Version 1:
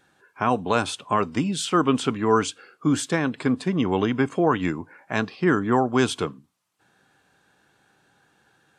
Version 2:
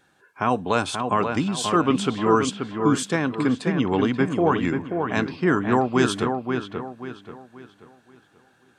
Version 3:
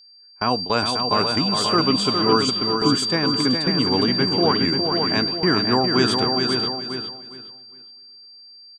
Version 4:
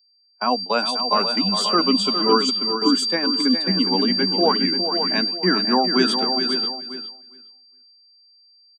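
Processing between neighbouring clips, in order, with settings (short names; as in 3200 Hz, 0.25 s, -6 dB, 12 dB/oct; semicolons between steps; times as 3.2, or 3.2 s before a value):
dark delay 0.533 s, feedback 35%, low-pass 2800 Hz, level -5.5 dB
whine 4700 Hz -26 dBFS; gate with hold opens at -15 dBFS; feedback echo 0.41 s, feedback 23%, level -6 dB
per-bin expansion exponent 1.5; rippled Chebyshev high-pass 180 Hz, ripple 3 dB; gain +4.5 dB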